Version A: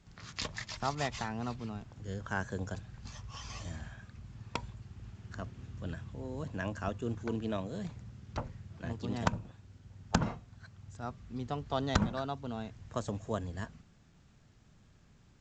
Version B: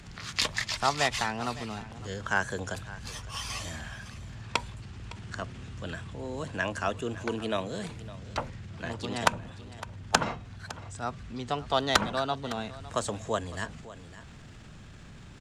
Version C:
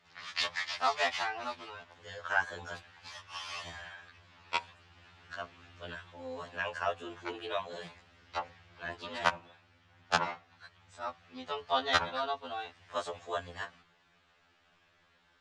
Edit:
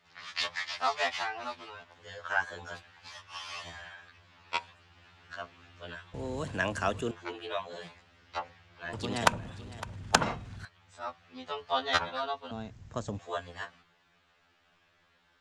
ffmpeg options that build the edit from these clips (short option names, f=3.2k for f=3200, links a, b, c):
-filter_complex "[1:a]asplit=2[a][b];[2:a]asplit=4[c][d][e][f];[c]atrim=end=6.142[g];[a]atrim=start=6.138:end=7.112[h];[d]atrim=start=7.108:end=8.932[i];[b]atrim=start=8.928:end=10.652[j];[e]atrim=start=10.648:end=12.512[k];[0:a]atrim=start=12.508:end=13.192[l];[f]atrim=start=13.188[m];[g][h]acrossfade=d=0.004:c1=hsin:c2=hsin[n];[n][i]acrossfade=d=0.004:c1=hsin:c2=hsin[o];[o][j]acrossfade=d=0.004:c1=hsin:c2=hsin[p];[p][k]acrossfade=d=0.004:c1=hsin:c2=hsin[q];[q][l]acrossfade=d=0.004:c1=hsin:c2=hsin[r];[r][m]acrossfade=d=0.004:c1=hsin:c2=hsin"